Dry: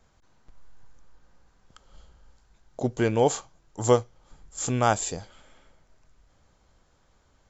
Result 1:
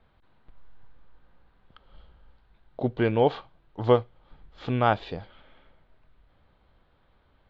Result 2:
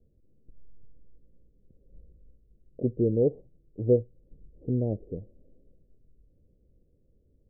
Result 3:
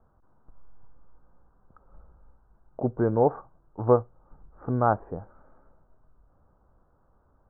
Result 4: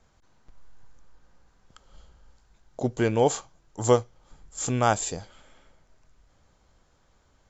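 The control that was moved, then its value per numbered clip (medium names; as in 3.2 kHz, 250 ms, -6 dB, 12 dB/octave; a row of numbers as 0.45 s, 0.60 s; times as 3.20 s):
steep low-pass, frequency: 4 kHz, 510 Hz, 1.4 kHz, 12 kHz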